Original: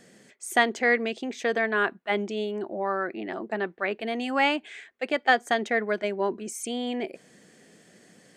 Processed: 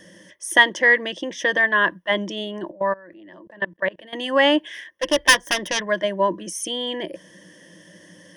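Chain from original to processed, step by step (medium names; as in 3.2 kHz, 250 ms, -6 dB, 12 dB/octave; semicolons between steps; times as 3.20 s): 4.73–5.85 s: self-modulated delay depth 0.68 ms; rippled EQ curve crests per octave 1.2, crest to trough 16 dB; 2.71–4.13 s: level held to a coarse grid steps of 24 dB; trim +4 dB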